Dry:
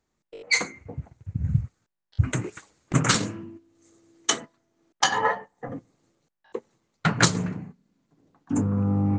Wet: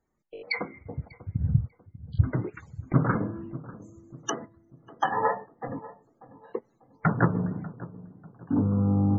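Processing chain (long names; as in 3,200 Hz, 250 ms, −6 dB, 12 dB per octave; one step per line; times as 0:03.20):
treble cut that deepens with the level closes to 1,200 Hz, closed at −23.5 dBFS
feedback echo with a low-pass in the loop 593 ms, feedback 42%, low-pass 990 Hz, level −16.5 dB
spectral peaks only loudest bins 64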